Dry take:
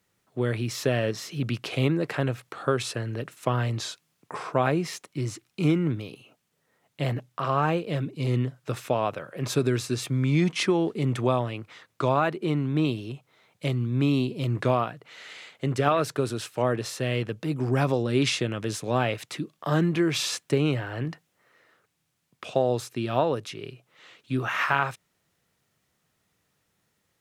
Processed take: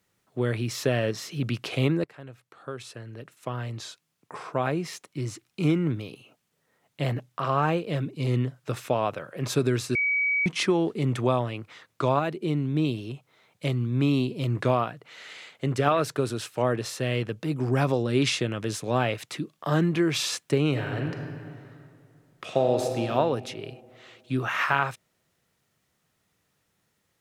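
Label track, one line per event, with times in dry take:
2.040000	6.010000	fade in, from -20.5 dB
9.950000	10.460000	bleep 2.27 kHz -21.5 dBFS
12.190000	12.940000	peaking EQ 1.2 kHz -7.5 dB 1.7 oct
20.680000	23.010000	reverb throw, RT60 2.4 s, DRR 3 dB

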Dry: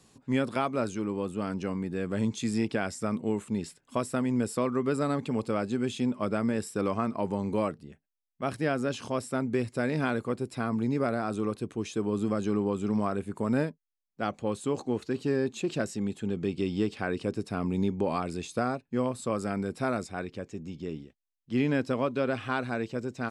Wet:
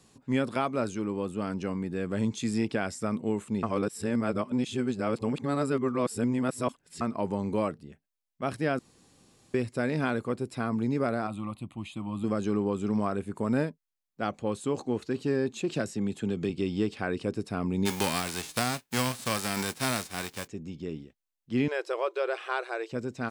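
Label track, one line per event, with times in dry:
3.630000	7.010000	reverse
8.790000	9.540000	room tone
11.270000	12.240000	static phaser centre 1.6 kHz, stages 6
15.750000	16.500000	three bands compressed up and down depth 70%
17.850000	20.460000	formants flattened exponent 0.3
21.680000	22.920000	brick-wall FIR high-pass 330 Hz

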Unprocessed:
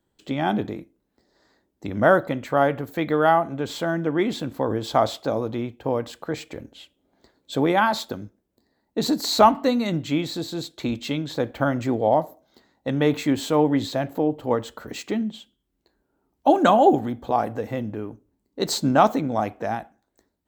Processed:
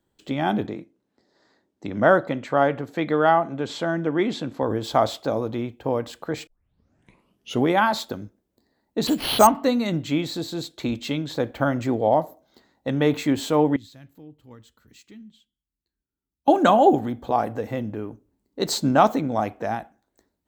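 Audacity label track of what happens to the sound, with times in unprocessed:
0.660000	4.630000	band-pass 110–7400 Hz
6.470000	6.470000	tape start 1.24 s
9.070000	9.470000	careless resampling rate divided by 6×, down none, up hold
13.760000	16.480000	amplifier tone stack bass-middle-treble 6-0-2

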